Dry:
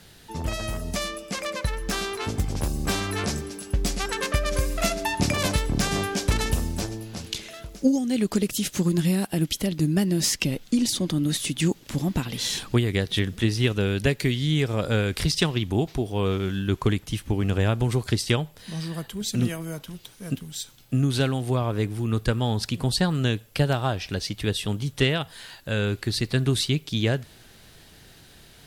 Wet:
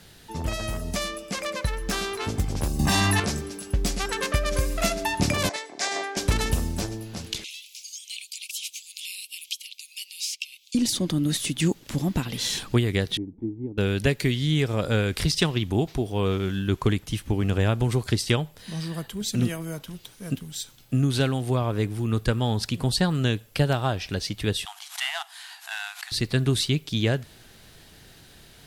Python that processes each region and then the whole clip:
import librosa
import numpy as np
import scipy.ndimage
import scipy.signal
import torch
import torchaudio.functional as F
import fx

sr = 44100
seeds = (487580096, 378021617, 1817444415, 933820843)

y = fx.chain(x, sr, fx.highpass(hz=75.0, slope=12),
    fx.comb(ms=1.1, depth=0.7),
    fx.env_flatten(amount_pct=100), at=(2.79, 3.2))
y = fx.chain(y, sr, fx.cabinet(low_hz=390.0, low_slope=24, high_hz=8100.0, hz=(490.0, 700.0, 1300.0, 2000.0, 2900.0), db=(-8, 5, -6, 5, -6)),
    fx.band_widen(depth_pct=100), at=(5.49, 6.17))
y = fx.chain(y, sr, fx.steep_highpass(hz=2300.0, slope=96),
    fx.high_shelf(hz=6700.0, db=-6.5),
    fx.band_squash(depth_pct=70), at=(7.44, 10.75))
y = fx.chain(y, sr, fx.formant_cascade(vowel='u'),
    fx.dynamic_eq(hz=1400.0, q=1.5, threshold_db=-54.0, ratio=4.0, max_db=-4), at=(13.17, 13.78))
y = fx.chain(y, sr, fx.cvsd(bps=64000),
    fx.brickwall_highpass(low_hz=670.0),
    fx.pre_swell(db_per_s=150.0), at=(24.65, 26.12))